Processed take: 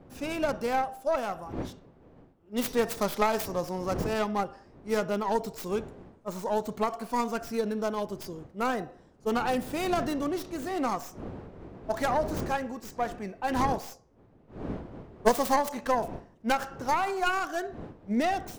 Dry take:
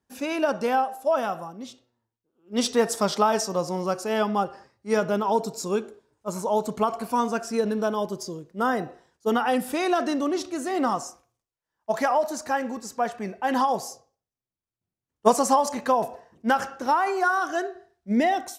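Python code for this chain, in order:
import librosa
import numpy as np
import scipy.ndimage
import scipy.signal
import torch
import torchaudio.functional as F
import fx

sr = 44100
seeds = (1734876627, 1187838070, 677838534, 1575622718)

y = fx.tracing_dist(x, sr, depth_ms=0.4)
y = fx.dmg_wind(y, sr, seeds[0], corner_hz=380.0, level_db=-38.0)
y = y * librosa.db_to_amplitude(-5.0)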